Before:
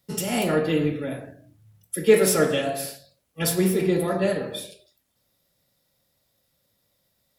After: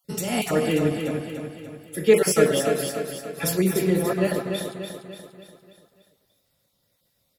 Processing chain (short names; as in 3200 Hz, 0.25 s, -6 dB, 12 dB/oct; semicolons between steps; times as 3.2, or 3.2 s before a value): random spectral dropouts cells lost 21%; on a send: feedback echo 0.292 s, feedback 50%, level -6.5 dB